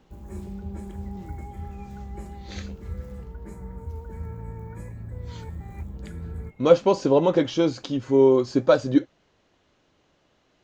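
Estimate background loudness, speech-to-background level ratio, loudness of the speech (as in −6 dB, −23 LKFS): −38.0 LKFS, 17.5 dB, −20.5 LKFS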